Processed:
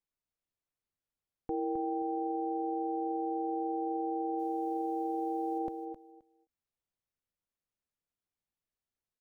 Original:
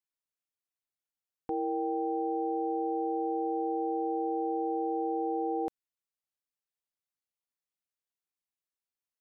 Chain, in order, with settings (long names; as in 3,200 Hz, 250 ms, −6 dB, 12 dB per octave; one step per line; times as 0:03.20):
spectral tilt −2.5 dB per octave
brickwall limiter −26 dBFS, peak gain reduction 5 dB
0:04.38–0:05.58: background noise white −73 dBFS
on a send: repeating echo 263 ms, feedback 17%, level −7 dB
on the sum: every ending faded ahead of time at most 430 dB per second